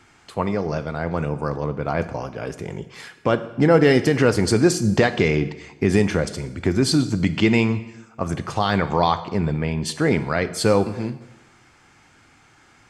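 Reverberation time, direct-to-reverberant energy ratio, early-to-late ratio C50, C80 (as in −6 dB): 1.0 s, 11.5 dB, 14.0 dB, 16.0 dB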